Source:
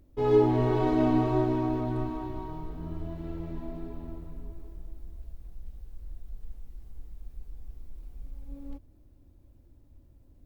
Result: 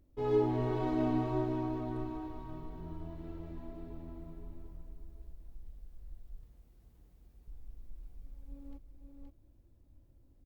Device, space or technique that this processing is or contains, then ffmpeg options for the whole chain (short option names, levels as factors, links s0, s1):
ducked delay: -filter_complex "[0:a]asplit=3[s0][s1][s2];[s1]adelay=523,volume=0.631[s3];[s2]apad=whole_len=484015[s4];[s3][s4]sidechaincompress=threshold=0.0178:ratio=8:attack=16:release=1080[s5];[s0][s5]amix=inputs=2:normalize=0,asettb=1/sr,asplit=3[s6][s7][s8];[s6]atrim=end=6.434[s9];[s7]atrim=start=6.43:end=7.48,asetpts=PTS-STARTPTS,afade=t=in:d=0.004:c=qsin,afade=t=out:st=1.046:d=0.004:c=qsin,highpass=65[s10];[s8]atrim=start=7.476[s11];[s9][s10]acrossfade=d=0.004:c1=hsin:c2=qsin[s12];[s12][s11]acrossfade=d=0.004:c1=qsin:c2=hsin,volume=0.422"